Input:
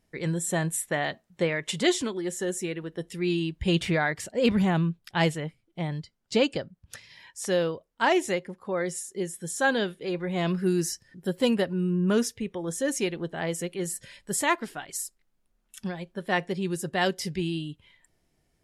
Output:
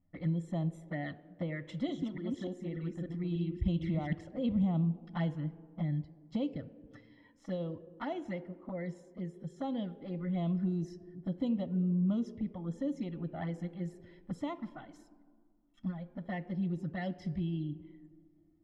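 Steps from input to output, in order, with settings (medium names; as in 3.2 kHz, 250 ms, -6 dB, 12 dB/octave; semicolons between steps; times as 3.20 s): 1.59–4.13 s: chunks repeated in reverse 294 ms, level -3 dB; small resonant body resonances 290/3300 Hz, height 10 dB, ringing for 65 ms; compression 3:1, threshold -26 dBFS, peak gain reduction 10 dB; peaking EQ 2.8 kHz -8 dB 2.1 oct; touch-sensitive flanger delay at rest 11.8 ms, full sweep at -25.5 dBFS; distance through air 220 m; reverberation RT60 1.9 s, pre-delay 3 ms, DRR 15 dB; tape noise reduction on one side only decoder only; trim -5 dB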